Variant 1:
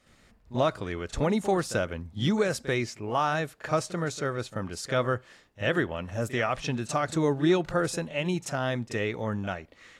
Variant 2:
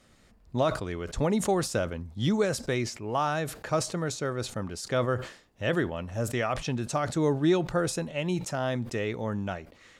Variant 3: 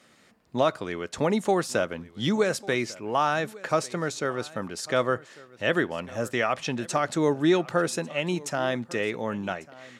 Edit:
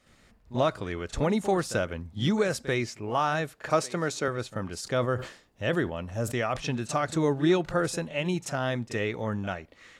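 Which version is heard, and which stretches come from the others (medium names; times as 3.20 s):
1
3.70–4.28 s: from 3
4.81–6.57 s: from 2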